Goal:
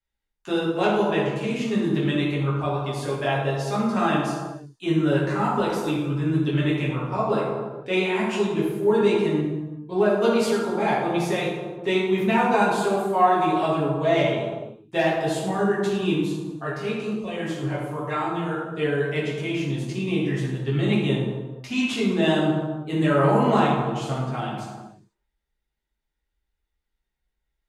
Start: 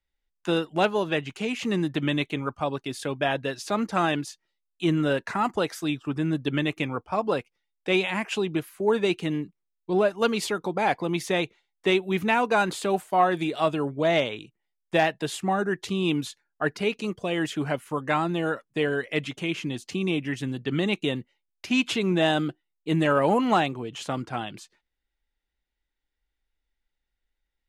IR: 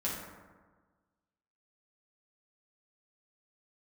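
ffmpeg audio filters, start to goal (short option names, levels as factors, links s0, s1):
-filter_complex "[0:a]asplit=3[s0][s1][s2];[s0]afade=t=out:st=16.14:d=0.02[s3];[s1]flanger=delay=15.5:depth=7.7:speed=1.1,afade=t=in:st=16.14:d=0.02,afade=t=out:st=18.78:d=0.02[s4];[s2]afade=t=in:st=18.78:d=0.02[s5];[s3][s4][s5]amix=inputs=3:normalize=0[s6];[1:a]atrim=start_sample=2205,afade=t=out:st=0.41:d=0.01,atrim=end_sample=18522,asetrate=31311,aresample=44100[s7];[s6][s7]afir=irnorm=-1:irlink=0,volume=0.531"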